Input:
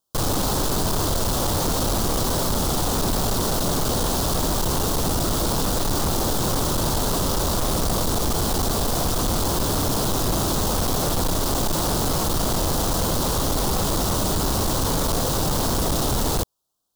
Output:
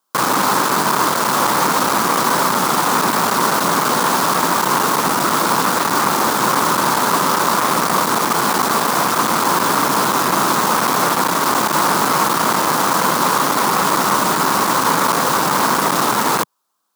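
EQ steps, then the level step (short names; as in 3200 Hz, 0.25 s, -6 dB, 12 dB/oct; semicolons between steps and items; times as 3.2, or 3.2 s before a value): HPF 170 Hz 24 dB/oct; band shelf 1500 Hz +11.5 dB; +4.5 dB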